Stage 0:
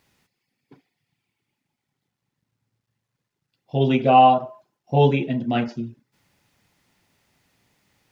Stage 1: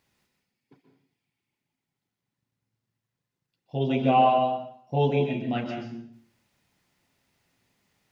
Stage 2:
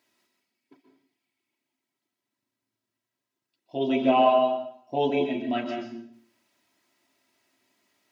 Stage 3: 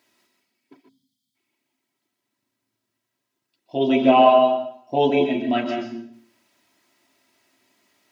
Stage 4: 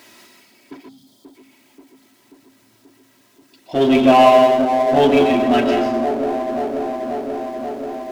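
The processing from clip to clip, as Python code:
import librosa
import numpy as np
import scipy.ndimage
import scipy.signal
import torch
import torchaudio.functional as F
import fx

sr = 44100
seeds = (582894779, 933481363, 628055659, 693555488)

y1 = fx.rev_plate(x, sr, seeds[0], rt60_s=0.6, hf_ratio=1.0, predelay_ms=115, drr_db=3.5)
y1 = y1 * librosa.db_to_amplitude(-7.0)
y2 = scipy.signal.sosfilt(scipy.signal.butter(2, 210.0, 'highpass', fs=sr, output='sos'), y1)
y2 = y2 + 0.68 * np.pad(y2, (int(3.1 * sr / 1000.0), 0))[:len(y2)]
y3 = fx.spec_box(y2, sr, start_s=0.89, length_s=0.46, low_hz=260.0, high_hz=3000.0, gain_db=-26)
y3 = y3 * librosa.db_to_amplitude(6.0)
y4 = fx.echo_wet_bandpass(y3, sr, ms=534, feedback_pct=69, hz=420.0, wet_db=-9)
y4 = fx.power_curve(y4, sr, exponent=0.7)
y4 = y4 * librosa.db_to_amplitude(1.0)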